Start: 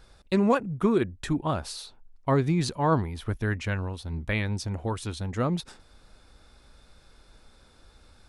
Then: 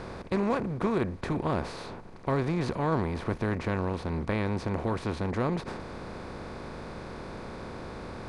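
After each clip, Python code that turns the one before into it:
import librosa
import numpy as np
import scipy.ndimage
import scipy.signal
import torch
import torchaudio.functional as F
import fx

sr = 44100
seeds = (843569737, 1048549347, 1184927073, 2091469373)

y = fx.bin_compress(x, sr, power=0.4)
y = fx.lowpass(y, sr, hz=2600.0, slope=6)
y = fx.peak_eq(y, sr, hz=74.0, db=4.0, octaves=0.77)
y = y * 10.0 ** (-8.0 / 20.0)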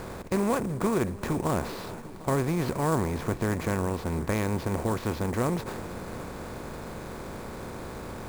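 y = fx.echo_heads(x, sr, ms=373, heads='first and second', feedback_pct=47, wet_db=-20)
y = fx.sample_hold(y, sr, seeds[0], rate_hz=8800.0, jitter_pct=20)
y = y * 10.0 ** (1.5 / 20.0)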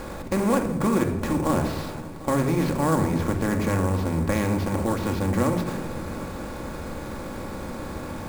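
y = fx.room_shoebox(x, sr, seeds[1], volume_m3=3300.0, walls='furnished', distance_m=2.3)
y = y * 10.0 ** (2.0 / 20.0)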